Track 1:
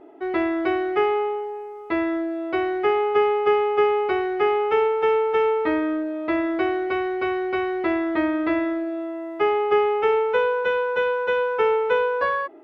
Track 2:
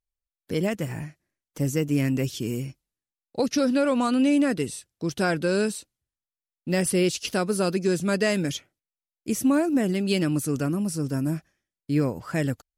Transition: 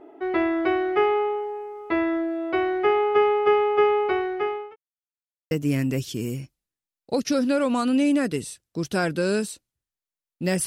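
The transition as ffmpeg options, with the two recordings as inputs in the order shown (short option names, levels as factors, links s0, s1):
-filter_complex "[0:a]apad=whole_dur=10.66,atrim=end=10.66,asplit=2[s0][s1];[s0]atrim=end=4.76,asetpts=PTS-STARTPTS,afade=t=out:st=3.88:d=0.88:c=qsin[s2];[s1]atrim=start=4.76:end=5.51,asetpts=PTS-STARTPTS,volume=0[s3];[1:a]atrim=start=1.77:end=6.92,asetpts=PTS-STARTPTS,afade=t=in:d=0.004:c=hsin[s4];[s2][s3][s4]concat=n=3:v=0:a=1"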